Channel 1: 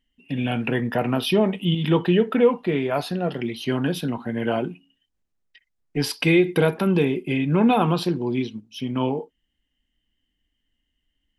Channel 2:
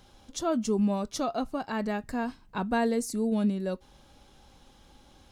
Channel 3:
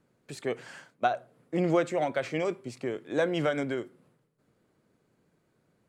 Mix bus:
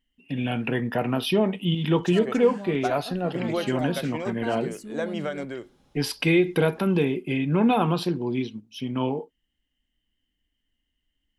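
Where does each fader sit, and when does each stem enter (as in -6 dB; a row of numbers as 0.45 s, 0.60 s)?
-2.5 dB, -9.0 dB, -3.0 dB; 0.00 s, 1.70 s, 1.80 s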